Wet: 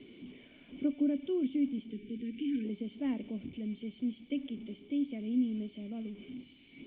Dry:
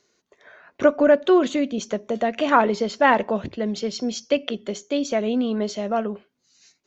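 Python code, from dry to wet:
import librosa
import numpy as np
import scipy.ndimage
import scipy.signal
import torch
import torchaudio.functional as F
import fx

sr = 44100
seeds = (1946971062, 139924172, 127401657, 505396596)

y = fx.delta_mod(x, sr, bps=64000, step_db=-27.0)
y = fx.formant_cascade(y, sr, vowel='i')
y = fx.spec_erase(y, sr, start_s=1.91, length_s=0.74, low_hz=480.0, high_hz=1500.0)
y = y * 10.0 ** (-5.0 / 20.0)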